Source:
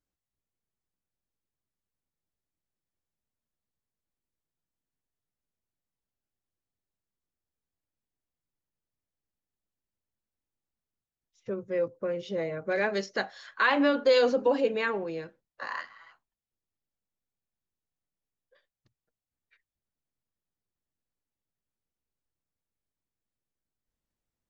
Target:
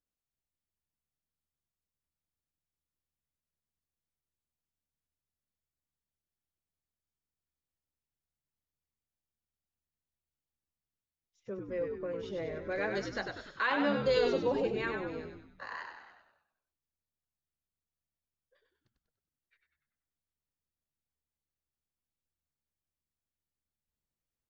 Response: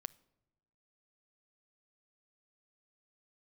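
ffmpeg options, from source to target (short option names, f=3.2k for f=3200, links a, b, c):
-filter_complex "[0:a]asplit=7[a][b][c][d][e][f][g];[b]adelay=97,afreqshift=-74,volume=-5dB[h];[c]adelay=194,afreqshift=-148,volume=-11.2dB[i];[d]adelay=291,afreqshift=-222,volume=-17.4dB[j];[e]adelay=388,afreqshift=-296,volume=-23.6dB[k];[f]adelay=485,afreqshift=-370,volume=-29.8dB[l];[g]adelay=582,afreqshift=-444,volume=-36dB[m];[a][h][i][j][k][l][m]amix=inputs=7:normalize=0,volume=-7dB"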